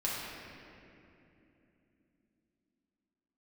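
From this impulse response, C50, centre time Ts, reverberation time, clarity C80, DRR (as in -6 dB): -2.0 dB, 150 ms, 3.0 s, -0.5 dB, -7.0 dB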